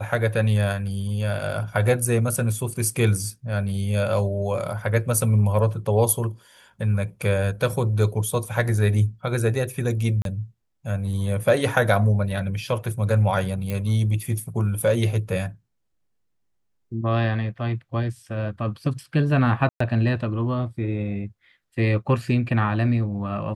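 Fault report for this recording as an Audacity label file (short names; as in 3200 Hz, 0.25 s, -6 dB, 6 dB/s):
10.220000	10.250000	gap 32 ms
13.700000	13.700000	pop -15 dBFS
19.690000	19.800000	gap 0.114 s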